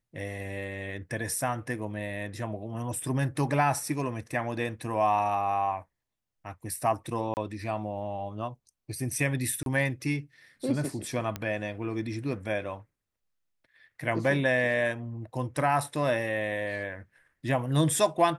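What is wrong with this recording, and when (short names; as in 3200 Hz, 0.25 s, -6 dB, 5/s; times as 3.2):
7.34–7.37 gap 29 ms
9.63–9.66 gap 32 ms
11.36 pop -17 dBFS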